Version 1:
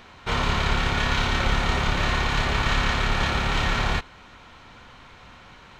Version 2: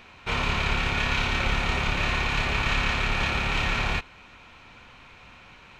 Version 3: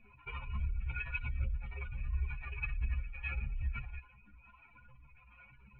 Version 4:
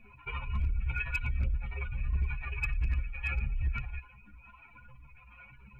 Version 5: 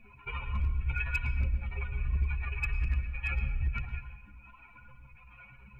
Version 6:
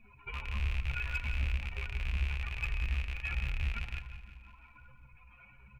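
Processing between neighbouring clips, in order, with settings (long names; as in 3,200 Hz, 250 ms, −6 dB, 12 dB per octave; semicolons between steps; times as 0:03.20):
parametric band 2,500 Hz +9.5 dB 0.28 octaves; level −3.5 dB
expanding power law on the bin magnitudes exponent 3.3; two-band tremolo in antiphase 1.4 Hz, depth 70%, crossover 410 Hz; stiff-string resonator 61 Hz, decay 0.26 s, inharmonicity 0.03; level +2 dB
hard clipping −29 dBFS, distortion −21 dB; level +5.5 dB
convolution reverb RT60 0.80 s, pre-delay 102 ms, DRR 8.5 dB
loose part that buzzes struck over −35 dBFS, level −24 dBFS; flanger 1.2 Hz, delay 0.8 ms, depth 3.8 ms, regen −57%; repeating echo 175 ms, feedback 59%, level −13.5 dB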